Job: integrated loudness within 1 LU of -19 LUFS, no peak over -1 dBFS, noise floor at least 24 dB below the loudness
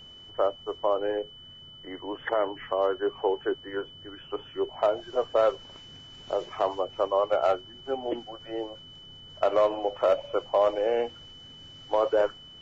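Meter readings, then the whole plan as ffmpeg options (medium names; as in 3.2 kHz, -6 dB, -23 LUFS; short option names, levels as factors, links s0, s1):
steady tone 3 kHz; tone level -46 dBFS; loudness -28.0 LUFS; peak level -14.0 dBFS; loudness target -19.0 LUFS
-> -af "bandreject=f=3000:w=30"
-af "volume=2.82"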